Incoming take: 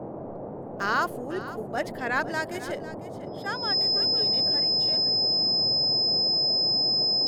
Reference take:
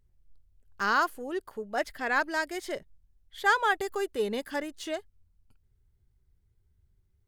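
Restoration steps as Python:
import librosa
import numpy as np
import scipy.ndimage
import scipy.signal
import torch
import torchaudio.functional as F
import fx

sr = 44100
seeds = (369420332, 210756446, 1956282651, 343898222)

y = fx.notch(x, sr, hz=5100.0, q=30.0)
y = fx.noise_reduce(y, sr, print_start_s=0.23, print_end_s=0.73, reduce_db=30.0)
y = fx.fix_echo_inverse(y, sr, delay_ms=500, level_db=-14.5)
y = fx.fix_level(y, sr, at_s=2.95, step_db=9.0)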